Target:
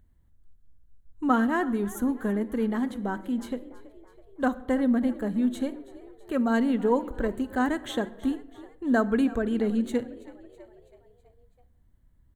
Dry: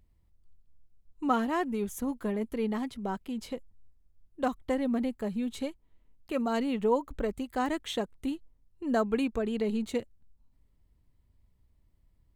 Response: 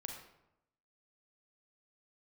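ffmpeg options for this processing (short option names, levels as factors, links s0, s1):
-filter_complex "[0:a]equalizer=f=250:t=o:w=0.33:g=5,equalizer=f=1600:t=o:w=0.33:g=9,equalizer=f=2500:t=o:w=0.33:g=-8,equalizer=f=5000:t=o:w=0.33:g=-11,asplit=6[s0][s1][s2][s3][s4][s5];[s1]adelay=327,afreqshift=50,volume=0.106[s6];[s2]adelay=654,afreqshift=100,volume=0.0596[s7];[s3]adelay=981,afreqshift=150,volume=0.0331[s8];[s4]adelay=1308,afreqshift=200,volume=0.0186[s9];[s5]adelay=1635,afreqshift=250,volume=0.0105[s10];[s0][s6][s7][s8][s9][s10]amix=inputs=6:normalize=0,asplit=2[s11][s12];[1:a]atrim=start_sample=2205,lowshelf=f=280:g=9.5[s13];[s12][s13]afir=irnorm=-1:irlink=0,volume=0.335[s14];[s11][s14]amix=inputs=2:normalize=0"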